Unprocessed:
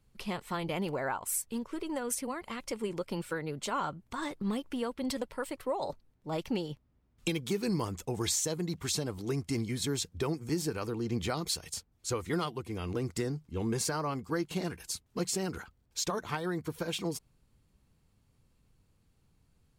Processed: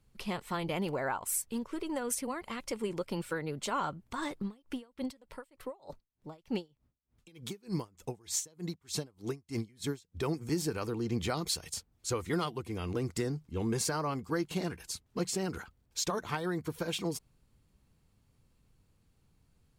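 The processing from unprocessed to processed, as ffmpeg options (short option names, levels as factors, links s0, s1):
-filter_complex "[0:a]asettb=1/sr,asplit=3[s0][s1][s2];[s0]atrim=end=4.434[s3];[s1]atrim=start=4.43:end=10.23,asetpts=PTS-STARTPTS,afade=t=in:d=0.004:c=qsin,afade=t=out:st=5.796:d=0.004:c=qsin,aeval=exprs='val(0)*pow(10,-29*(0.5-0.5*cos(2*PI*3.3*n/s))/20)':c=same[s4];[s2]atrim=start=10.226[s5];[s3][s4]acrossfade=d=0.004:c1=hsin:c2=qsin[s6];[s6][s5]acrossfade=d=0.004:c1=qsin:c2=hsin,asettb=1/sr,asplit=3[s7][s8][s9];[s7]atrim=end=14.654[s10];[s8]atrim=start=14.65:end=15.5,asetpts=PTS-STARTPTS,afade=t=in:d=0.004:c=qsin,afade=t=out:st=0.846:d=0.004:c=qsin,highshelf=f=5300:g=-4[s11];[s9]atrim=start=15.496[s12];[s10][s11]acrossfade=d=0.004:c1=hsin:c2=qsin[s13];[s13][s12]acrossfade=d=0.004:c1=qsin:c2=hsin"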